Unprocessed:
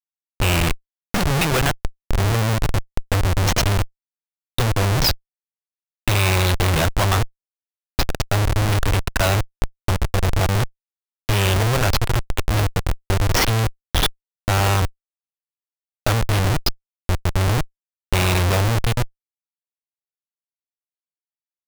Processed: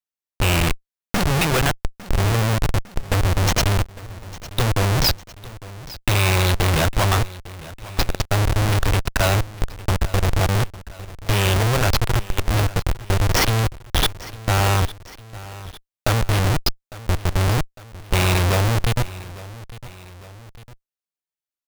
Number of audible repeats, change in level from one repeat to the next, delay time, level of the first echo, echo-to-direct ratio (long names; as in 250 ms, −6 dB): 2, −5.0 dB, 854 ms, −18.0 dB, −17.0 dB